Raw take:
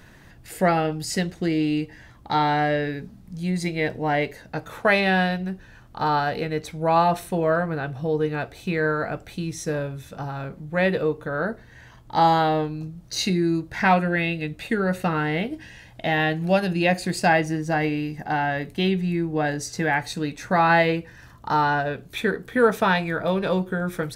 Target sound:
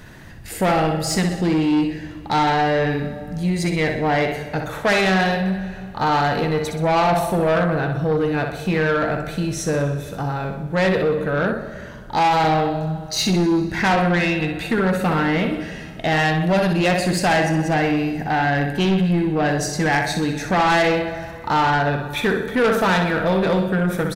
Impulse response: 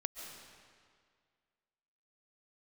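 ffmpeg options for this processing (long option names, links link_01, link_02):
-filter_complex "[0:a]aecho=1:1:63|126|189|252|315|378:0.447|0.21|0.0987|0.0464|0.0218|0.0102,asplit=2[link_01][link_02];[1:a]atrim=start_sample=2205,lowshelf=frequency=410:gain=7.5[link_03];[link_02][link_03]afir=irnorm=-1:irlink=0,volume=-10dB[link_04];[link_01][link_04]amix=inputs=2:normalize=0,asoftclip=type=tanh:threshold=-17.5dB,volume=4dB"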